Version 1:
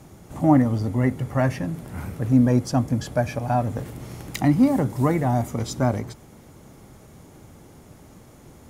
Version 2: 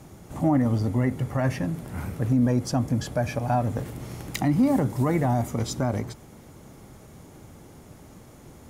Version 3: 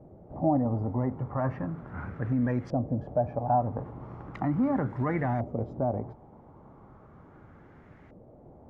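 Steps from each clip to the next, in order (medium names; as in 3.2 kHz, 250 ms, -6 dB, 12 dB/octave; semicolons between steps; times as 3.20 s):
peak limiter -13.5 dBFS, peak gain reduction 8 dB
LFO low-pass saw up 0.37 Hz 570–2000 Hz; trim -6 dB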